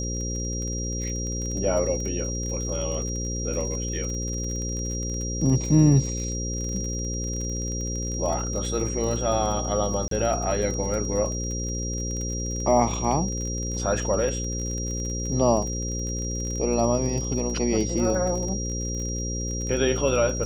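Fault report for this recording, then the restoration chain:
buzz 60 Hz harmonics 9 -30 dBFS
crackle 37 per s -31 dBFS
whine 5.7 kHz -32 dBFS
10.08–10.11 s: dropout 33 ms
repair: de-click; band-stop 5.7 kHz, Q 30; de-hum 60 Hz, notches 9; interpolate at 10.08 s, 33 ms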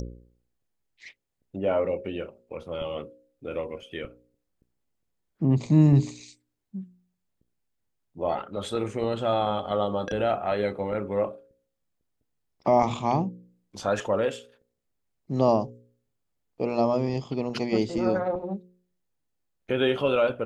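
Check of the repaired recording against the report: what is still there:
nothing left

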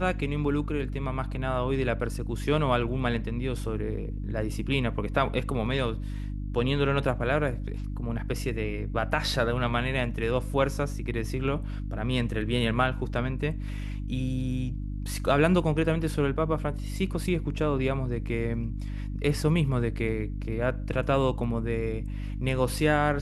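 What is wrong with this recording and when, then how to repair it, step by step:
hum 50 Hz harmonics 6 -33 dBFS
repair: de-hum 50 Hz, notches 6

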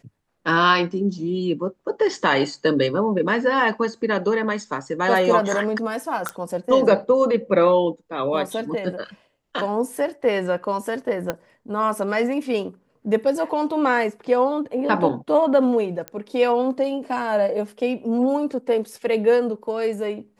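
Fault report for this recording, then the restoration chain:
6.29 s: pop -11 dBFS
11.30 s: pop -10 dBFS
16.08 s: pop -15 dBFS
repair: de-click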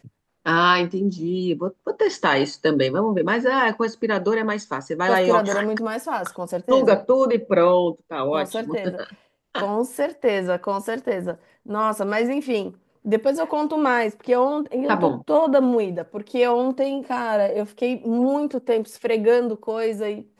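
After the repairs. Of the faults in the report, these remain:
11.30 s: pop

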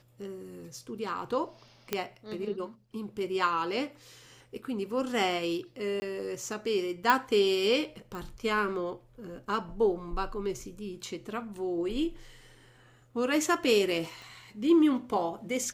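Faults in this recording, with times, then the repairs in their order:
1.93 s: pop -13 dBFS
6.00–6.02 s: dropout 20 ms
7.10 s: pop -11 dBFS
8.15 s: pop
14.22 s: pop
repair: de-click; interpolate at 6.00 s, 20 ms

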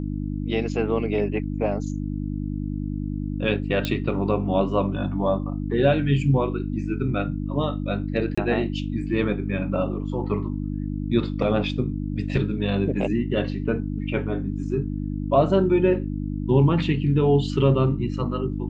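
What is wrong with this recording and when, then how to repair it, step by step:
hum 50 Hz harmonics 6 -28 dBFS
3.85 s: pop -11 dBFS
8.35–8.38 s: dropout 25 ms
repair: de-click; de-hum 50 Hz, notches 6; interpolate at 8.35 s, 25 ms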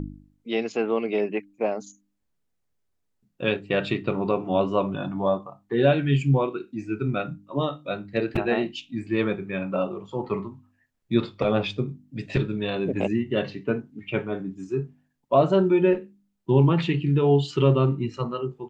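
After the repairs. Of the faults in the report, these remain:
nothing left

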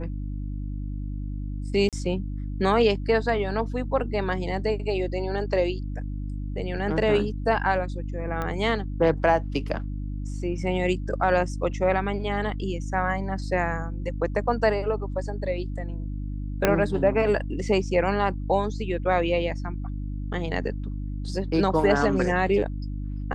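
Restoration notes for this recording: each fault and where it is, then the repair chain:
hum 50 Hz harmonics 6 -31 dBFS
1.89–1.93 s: dropout 37 ms
8.42 s: pop -17 dBFS
16.65 s: pop -5 dBFS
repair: de-click; de-hum 50 Hz, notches 6; interpolate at 1.89 s, 37 ms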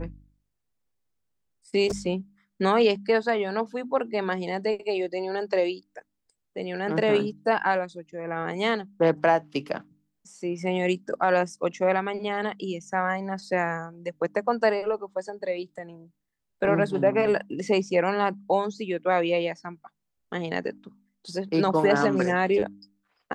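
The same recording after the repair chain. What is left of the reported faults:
16.65 s: pop

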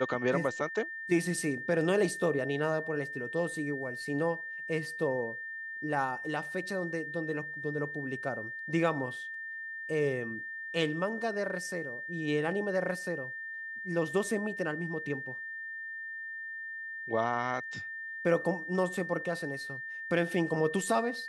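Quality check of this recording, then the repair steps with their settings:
whine 1.8 kHz -38 dBFS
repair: band-stop 1.8 kHz, Q 30

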